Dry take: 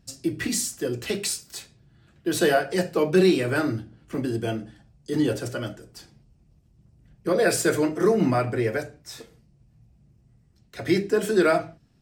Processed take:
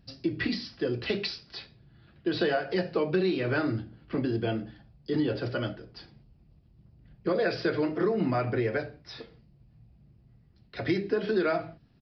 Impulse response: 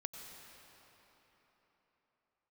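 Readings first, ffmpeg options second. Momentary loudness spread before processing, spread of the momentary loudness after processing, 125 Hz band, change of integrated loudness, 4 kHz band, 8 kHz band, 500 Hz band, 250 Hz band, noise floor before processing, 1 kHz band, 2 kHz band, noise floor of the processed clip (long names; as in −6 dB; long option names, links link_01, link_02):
16 LU, 17 LU, −3.5 dB, −5.5 dB, −4.0 dB, below −30 dB, −5.5 dB, −5.0 dB, −61 dBFS, −5.5 dB, −4.5 dB, −61 dBFS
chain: -af "acompressor=threshold=-24dB:ratio=4,aresample=11025,aresample=44100"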